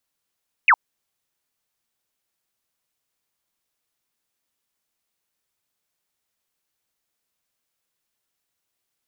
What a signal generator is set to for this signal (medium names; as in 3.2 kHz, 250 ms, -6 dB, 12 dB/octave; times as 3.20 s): laser zap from 2.8 kHz, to 830 Hz, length 0.06 s sine, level -10 dB